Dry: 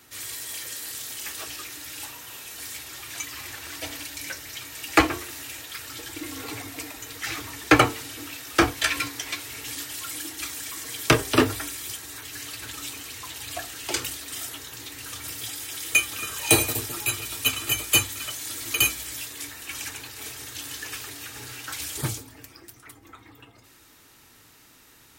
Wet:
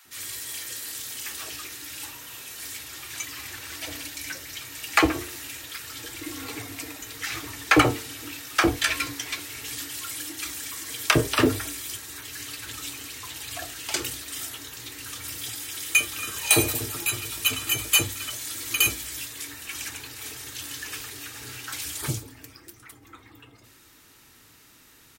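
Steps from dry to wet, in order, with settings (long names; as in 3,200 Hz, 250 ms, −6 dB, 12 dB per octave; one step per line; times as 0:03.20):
multiband delay without the direct sound highs, lows 50 ms, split 710 Hz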